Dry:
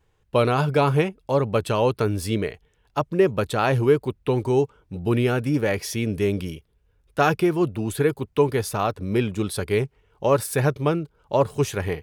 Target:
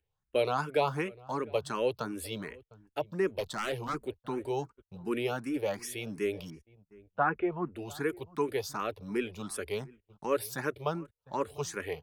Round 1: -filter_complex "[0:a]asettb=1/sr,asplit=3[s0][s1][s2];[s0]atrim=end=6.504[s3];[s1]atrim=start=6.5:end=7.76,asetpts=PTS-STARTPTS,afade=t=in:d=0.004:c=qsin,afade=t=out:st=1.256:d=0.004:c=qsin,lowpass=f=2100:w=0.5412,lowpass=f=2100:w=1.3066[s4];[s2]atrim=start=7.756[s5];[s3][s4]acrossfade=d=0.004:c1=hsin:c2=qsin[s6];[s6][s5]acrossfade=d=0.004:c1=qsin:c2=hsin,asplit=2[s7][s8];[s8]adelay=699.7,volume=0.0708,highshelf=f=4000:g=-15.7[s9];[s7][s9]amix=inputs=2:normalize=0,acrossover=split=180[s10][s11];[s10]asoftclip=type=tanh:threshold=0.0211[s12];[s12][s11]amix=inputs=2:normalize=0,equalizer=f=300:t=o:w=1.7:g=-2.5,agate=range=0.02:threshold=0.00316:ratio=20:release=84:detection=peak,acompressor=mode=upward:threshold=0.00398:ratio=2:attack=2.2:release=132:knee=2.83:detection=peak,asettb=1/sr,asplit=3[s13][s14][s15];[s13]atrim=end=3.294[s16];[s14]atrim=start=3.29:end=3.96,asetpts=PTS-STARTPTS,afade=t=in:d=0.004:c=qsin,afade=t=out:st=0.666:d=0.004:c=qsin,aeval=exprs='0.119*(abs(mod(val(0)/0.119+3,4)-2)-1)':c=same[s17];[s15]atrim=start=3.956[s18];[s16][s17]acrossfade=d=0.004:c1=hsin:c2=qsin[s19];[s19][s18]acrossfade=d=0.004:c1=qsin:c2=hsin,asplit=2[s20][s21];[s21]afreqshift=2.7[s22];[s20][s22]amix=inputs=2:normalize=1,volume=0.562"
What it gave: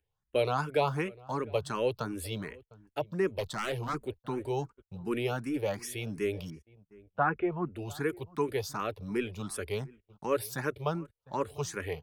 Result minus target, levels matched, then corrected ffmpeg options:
saturation: distortion -5 dB
-filter_complex "[0:a]asettb=1/sr,asplit=3[s0][s1][s2];[s0]atrim=end=6.504[s3];[s1]atrim=start=6.5:end=7.76,asetpts=PTS-STARTPTS,afade=t=in:d=0.004:c=qsin,afade=t=out:st=1.256:d=0.004:c=qsin,lowpass=f=2100:w=0.5412,lowpass=f=2100:w=1.3066[s4];[s2]atrim=start=7.756[s5];[s3][s4]acrossfade=d=0.004:c1=hsin:c2=qsin[s6];[s6][s5]acrossfade=d=0.004:c1=qsin:c2=hsin,asplit=2[s7][s8];[s8]adelay=699.7,volume=0.0708,highshelf=f=4000:g=-15.7[s9];[s7][s9]amix=inputs=2:normalize=0,acrossover=split=180[s10][s11];[s10]asoftclip=type=tanh:threshold=0.00596[s12];[s12][s11]amix=inputs=2:normalize=0,equalizer=f=300:t=o:w=1.7:g=-2.5,agate=range=0.02:threshold=0.00316:ratio=20:release=84:detection=peak,acompressor=mode=upward:threshold=0.00398:ratio=2:attack=2.2:release=132:knee=2.83:detection=peak,asettb=1/sr,asplit=3[s13][s14][s15];[s13]atrim=end=3.294[s16];[s14]atrim=start=3.29:end=3.96,asetpts=PTS-STARTPTS,afade=t=in:d=0.004:c=qsin,afade=t=out:st=0.666:d=0.004:c=qsin,aeval=exprs='0.119*(abs(mod(val(0)/0.119+3,4)-2)-1)':c=same[s17];[s15]atrim=start=3.956[s18];[s16][s17]acrossfade=d=0.004:c1=hsin:c2=qsin[s19];[s19][s18]acrossfade=d=0.004:c1=qsin:c2=hsin,asplit=2[s20][s21];[s21]afreqshift=2.7[s22];[s20][s22]amix=inputs=2:normalize=1,volume=0.562"

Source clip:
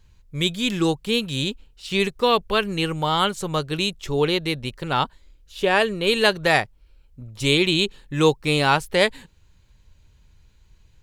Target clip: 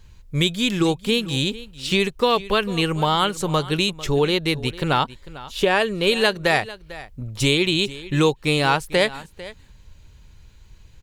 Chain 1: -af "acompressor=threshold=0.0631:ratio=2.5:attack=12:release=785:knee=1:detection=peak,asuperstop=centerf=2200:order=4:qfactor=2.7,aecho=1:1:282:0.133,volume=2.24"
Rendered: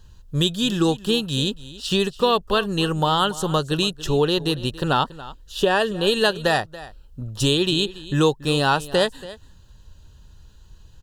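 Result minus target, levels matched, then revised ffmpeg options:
echo 166 ms early; 2 kHz band -3.0 dB
-af "acompressor=threshold=0.0631:ratio=2.5:attack=12:release=785:knee=1:detection=peak,aecho=1:1:448:0.133,volume=2.24"

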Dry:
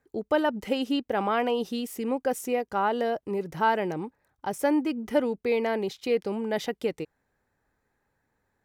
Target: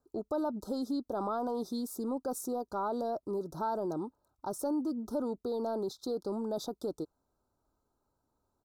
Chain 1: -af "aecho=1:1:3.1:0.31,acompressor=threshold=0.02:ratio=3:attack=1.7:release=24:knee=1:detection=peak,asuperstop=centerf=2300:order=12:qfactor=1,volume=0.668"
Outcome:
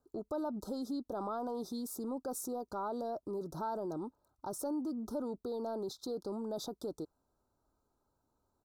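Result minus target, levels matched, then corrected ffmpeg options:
compression: peak gain reduction +4.5 dB
-af "aecho=1:1:3.1:0.31,acompressor=threshold=0.0422:ratio=3:attack=1.7:release=24:knee=1:detection=peak,asuperstop=centerf=2300:order=12:qfactor=1,volume=0.668"

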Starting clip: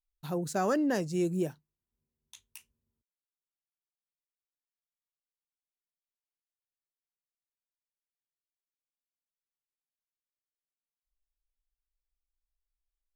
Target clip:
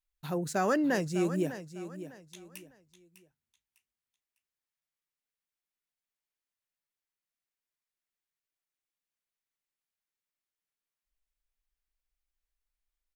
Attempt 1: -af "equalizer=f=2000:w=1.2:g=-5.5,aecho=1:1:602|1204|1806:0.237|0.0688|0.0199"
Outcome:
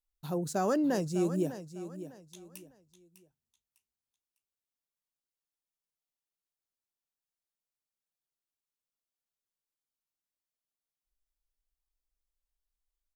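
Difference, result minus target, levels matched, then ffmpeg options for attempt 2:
2 kHz band -8.0 dB
-af "equalizer=f=2000:w=1.2:g=5,aecho=1:1:602|1204|1806:0.237|0.0688|0.0199"

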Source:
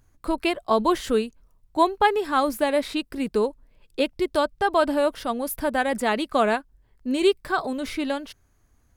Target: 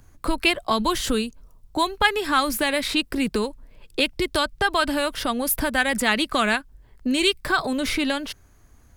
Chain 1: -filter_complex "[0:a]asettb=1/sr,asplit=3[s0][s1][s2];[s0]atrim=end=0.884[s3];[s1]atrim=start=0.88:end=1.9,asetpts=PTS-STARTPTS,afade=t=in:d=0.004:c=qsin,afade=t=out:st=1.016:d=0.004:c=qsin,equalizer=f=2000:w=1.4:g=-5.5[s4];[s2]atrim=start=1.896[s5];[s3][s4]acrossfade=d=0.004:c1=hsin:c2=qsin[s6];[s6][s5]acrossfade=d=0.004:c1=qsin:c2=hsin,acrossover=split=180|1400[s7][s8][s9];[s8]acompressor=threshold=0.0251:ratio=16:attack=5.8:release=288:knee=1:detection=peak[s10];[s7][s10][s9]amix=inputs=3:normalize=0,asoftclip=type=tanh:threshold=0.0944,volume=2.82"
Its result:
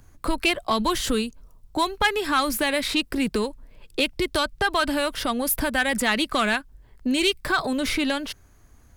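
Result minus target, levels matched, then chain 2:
saturation: distortion +17 dB
-filter_complex "[0:a]asettb=1/sr,asplit=3[s0][s1][s2];[s0]atrim=end=0.884[s3];[s1]atrim=start=0.88:end=1.9,asetpts=PTS-STARTPTS,afade=t=in:d=0.004:c=qsin,afade=t=out:st=1.016:d=0.004:c=qsin,equalizer=f=2000:w=1.4:g=-5.5[s4];[s2]atrim=start=1.896[s5];[s3][s4]acrossfade=d=0.004:c1=hsin:c2=qsin[s6];[s6][s5]acrossfade=d=0.004:c1=qsin:c2=hsin,acrossover=split=180|1400[s7][s8][s9];[s8]acompressor=threshold=0.0251:ratio=16:attack=5.8:release=288:knee=1:detection=peak[s10];[s7][s10][s9]amix=inputs=3:normalize=0,asoftclip=type=tanh:threshold=0.316,volume=2.82"

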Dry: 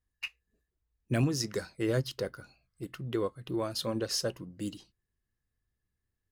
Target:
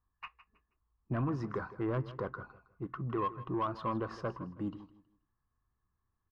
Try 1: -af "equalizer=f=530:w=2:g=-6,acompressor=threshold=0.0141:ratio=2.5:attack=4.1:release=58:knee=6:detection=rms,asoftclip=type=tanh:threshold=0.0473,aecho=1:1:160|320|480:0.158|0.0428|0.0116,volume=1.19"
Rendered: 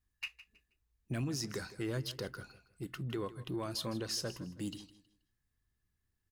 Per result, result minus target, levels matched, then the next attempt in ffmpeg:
1 kHz band -9.5 dB; compression: peak gain reduction +4 dB
-af "lowpass=f=1100:t=q:w=5.4,equalizer=f=530:w=2:g=-6,acompressor=threshold=0.0141:ratio=2.5:attack=4.1:release=58:knee=6:detection=rms,asoftclip=type=tanh:threshold=0.0473,aecho=1:1:160|320|480:0.158|0.0428|0.0116,volume=1.19"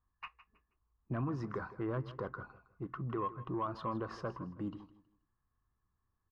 compression: peak gain reduction +4 dB
-af "lowpass=f=1100:t=q:w=5.4,equalizer=f=530:w=2:g=-6,acompressor=threshold=0.0316:ratio=2.5:attack=4.1:release=58:knee=6:detection=rms,asoftclip=type=tanh:threshold=0.0473,aecho=1:1:160|320|480:0.158|0.0428|0.0116,volume=1.19"

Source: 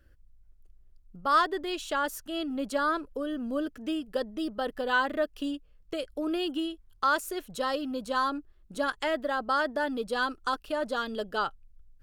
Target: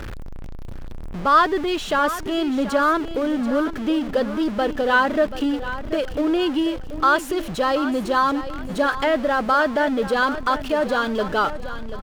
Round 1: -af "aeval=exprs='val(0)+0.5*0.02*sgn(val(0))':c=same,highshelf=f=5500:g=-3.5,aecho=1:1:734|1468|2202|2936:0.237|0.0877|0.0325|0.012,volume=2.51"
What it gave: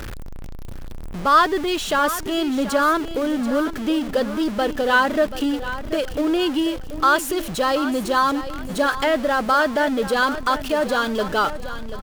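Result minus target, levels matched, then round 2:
8 kHz band +6.5 dB
-af "aeval=exprs='val(0)+0.5*0.02*sgn(val(0))':c=same,highshelf=f=5500:g=-14,aecho=1:1:734|1468|2202|2936:0.237|0.0877|0.0325|0.012,volume=2.51"

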